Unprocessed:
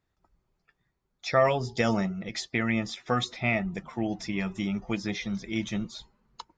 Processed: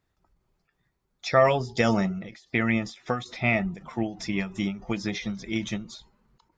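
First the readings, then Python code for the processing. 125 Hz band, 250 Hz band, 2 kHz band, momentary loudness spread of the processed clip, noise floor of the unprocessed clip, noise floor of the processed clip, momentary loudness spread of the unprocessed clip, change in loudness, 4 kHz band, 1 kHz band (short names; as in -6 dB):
+2.0 dB, +2.0 dB, +2.5 dB, 12 LU, -78 dBFS, -76 dBFS, 10 LU, +2.0 dB, -0.5 dB, +2.0 dB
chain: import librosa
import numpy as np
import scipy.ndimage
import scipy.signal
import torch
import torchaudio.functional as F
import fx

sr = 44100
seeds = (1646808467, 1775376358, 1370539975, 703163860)

y = fx.end_taper(x, sr, db_per_s=140.0)
y = y * librosa.db_to_amplitude(3.0)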